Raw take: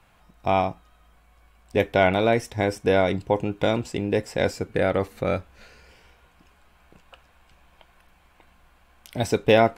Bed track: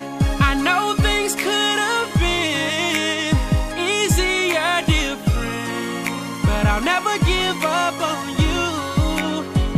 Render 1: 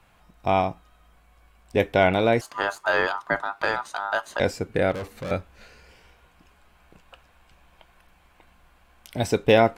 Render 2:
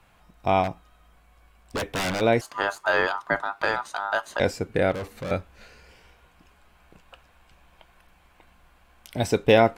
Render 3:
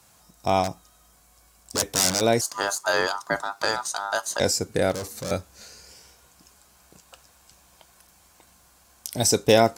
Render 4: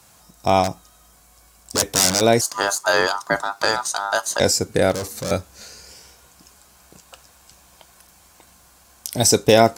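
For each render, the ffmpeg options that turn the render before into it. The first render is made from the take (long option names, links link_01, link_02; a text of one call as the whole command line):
ffmpeg -i in.wav -filter_complex "[0:a]asettb=1/sr,asplit=3[link_01][link_02][link_03];[link_01]atrim=end=2.414[link_04];[link_02]atrim=start=2.41:end=4.4,asetpts=PTS-STARTPTS,afade=type=in:duration=0.004:curve=qsin,afade=type=out:start_time=1.986:duration=0.004:curve=qsin,aeval=exprs='val(0)*sin(2*PI*1100*n/s)':channel_layout=same[link_05];[link_03]atrim=start=4.396[link_06];[link_04][link_05]acrossfade=duration=0.004:curve1=hsin:curve2=qsin[link_07];[link_07][link_06]acrossfade=duration=0.004:curve1=qsin:curve2=hsin,asettb=1/sr,asplit=3[link_08][link_09][link_10];[link_08]atrim=end=4.914[link_11];[link_09]atrim=start=4.91:end=5.31,asetpts=PTS-STARTPTS,afade=type=in:duration=0.004:curve=qsin,afade=type=out:start_time=0.396:duration=0.004:curve=qsin,volume=29.5dB,asoftclip=hard,volume=-29.5dB[link_12];[link_10]atrim=start=5.306[link_13];[link_11][link_12]acrossfade=duration=0.004:curve1=hsin:curve2=qsin[link_14];[link_14][link_13]acrossfade=duration=0.004:curve1=qsin:curve2=hsin" out.wav
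ffmpeg -i in.wav -filter_complex "[0:a]asplit=3[link_01][link_02][link_03];[link_01]afade=type=out:start_time=0.63:duration=0.02[link_04];[link_02]aeval=exprs='0.0841*(abs(mod(val(0)/0.0841+3,4)-2)-1)':channel_layout=same,afade=type=in:start_time=0.63:duration=0.02,afade=type=out:start_time=2.2:duration=0.02[link_05];[link_03]afade=type=in:start_time=2.2:duration=0.02[link_06];[link_04][link_05][link_06]amix=inputs=3:normalize=0" out.wav
ffmpeg -i in.wav -af "highpass=68,highshelf=frequency=4000:width_type=q:width=1.5:gain=14" out.wav
ffmpeg -i in.wav -af "volume=5dB,alimiter=limit=-1dB:level=0:latency=1" out.wav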